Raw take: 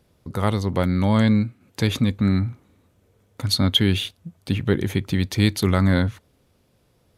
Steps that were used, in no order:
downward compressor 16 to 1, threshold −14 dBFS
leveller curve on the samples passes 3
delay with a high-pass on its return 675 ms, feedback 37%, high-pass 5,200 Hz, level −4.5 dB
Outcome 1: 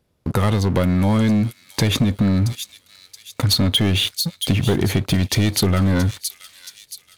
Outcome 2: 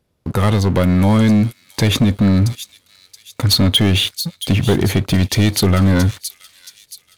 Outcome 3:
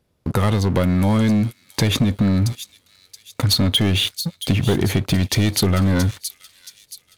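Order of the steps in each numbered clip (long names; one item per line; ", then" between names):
leveller curve on the samples, then delay with a high-pass on its return, then downward compressor
downward compressor, then leveller curve on the samples, then delay with a high-pass on its return
leveller curve on the samples, then downward compressor, then delay with a high-pass on its return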